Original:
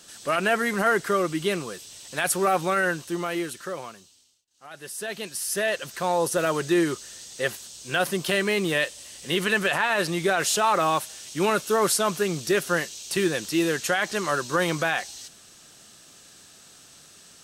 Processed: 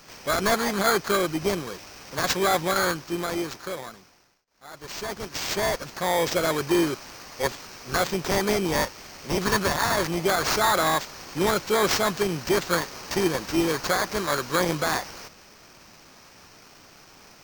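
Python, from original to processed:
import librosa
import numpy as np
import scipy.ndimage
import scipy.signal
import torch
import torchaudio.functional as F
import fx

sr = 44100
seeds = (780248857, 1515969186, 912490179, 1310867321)

y = fx.bit_reversed(x, sr, seeds[0], block=16)
y = fx.sample_hold(y, sr, seeds[1], rate_hz=11000.0, jitter_pct=0)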